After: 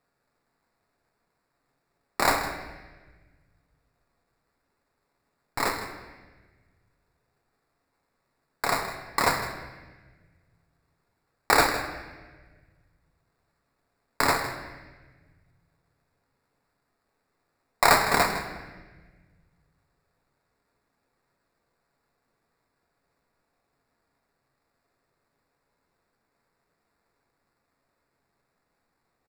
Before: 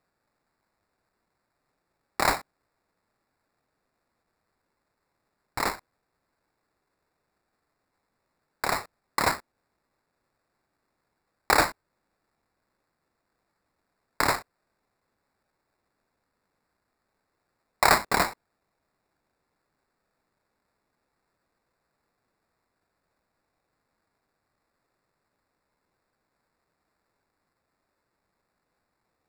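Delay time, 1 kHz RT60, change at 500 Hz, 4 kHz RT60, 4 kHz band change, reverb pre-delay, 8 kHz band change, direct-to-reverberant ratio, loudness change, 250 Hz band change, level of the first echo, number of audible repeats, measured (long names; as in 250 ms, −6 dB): 158 ms, 1.2 s, +2.5 dB, 1.1 s, +1.5 dB, 4 ms, +1.5 dB, 3.0 dB, +1.0 dB, +2.0 dB, −13.0 dB, 1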